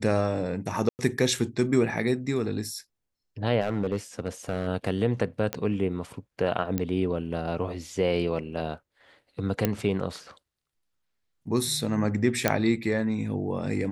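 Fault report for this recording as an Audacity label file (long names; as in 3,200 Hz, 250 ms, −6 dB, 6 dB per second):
0.890000	0.990000	drop-out 99 ms
3.610000	4.680000	clipping −21 dBFS
5.530000	5.530000	click −12 dBFS
6.780000	6.780000	click −14 dBFS
9.650000	9.650000	click −9 dBFS
12.480000	12.480000	click −6 dBFS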